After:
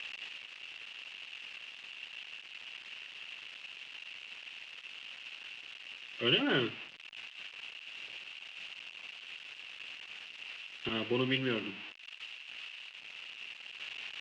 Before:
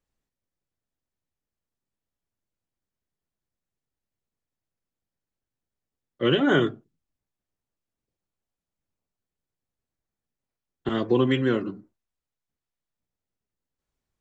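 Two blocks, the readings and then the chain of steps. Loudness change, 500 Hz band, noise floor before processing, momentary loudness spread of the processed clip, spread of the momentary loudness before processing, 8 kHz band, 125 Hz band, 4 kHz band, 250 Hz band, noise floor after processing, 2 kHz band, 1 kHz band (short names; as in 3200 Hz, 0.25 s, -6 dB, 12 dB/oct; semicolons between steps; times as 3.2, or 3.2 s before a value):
-15.5 dB, -11.0 dB, under -85 dBFS, 14 LU, 10 LU, n/a, -11.5 dB, +2.0 dB, -11.5 dB, -52 dBFS, -2.5 dB, -9.5 dB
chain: switching spikes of -16.5 dBFS; ladder low-pass 2900 Hz, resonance 80%; gain +1 dB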